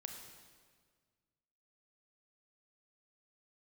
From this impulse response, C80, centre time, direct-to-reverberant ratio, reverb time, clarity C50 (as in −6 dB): 6.0 dB, 45 ms, 3.5 dB, 1.7 s, 4.5 dB